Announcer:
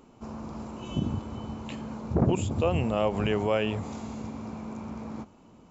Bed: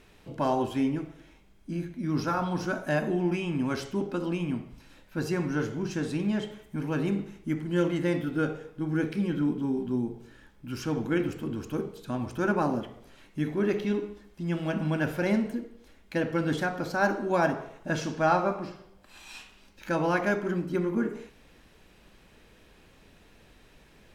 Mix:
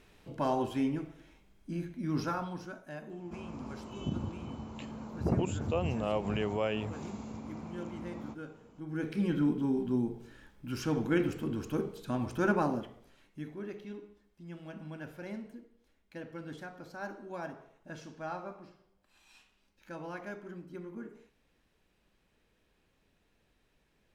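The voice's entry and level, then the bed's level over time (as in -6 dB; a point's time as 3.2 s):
3.10 s, -6.0 dB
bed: 2.24 s -4 dB
2.83 s -17 dB
8.62 s -17 dB
9.25 s -1.5 dB
12.49 s -1.5 dB
13.74 s -16 dB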